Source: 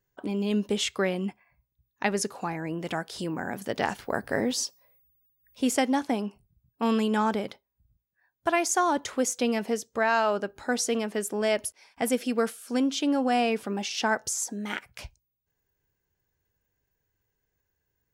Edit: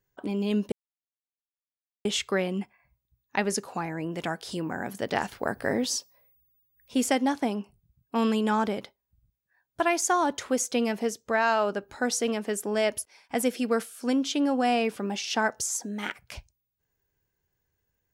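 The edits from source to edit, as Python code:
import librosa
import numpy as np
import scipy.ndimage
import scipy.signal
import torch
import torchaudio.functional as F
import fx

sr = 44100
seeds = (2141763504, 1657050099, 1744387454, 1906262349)

y = fx.edit(x, sr, fx.insert_silence(at_s=0.72, length_s=1.33), tone=tone)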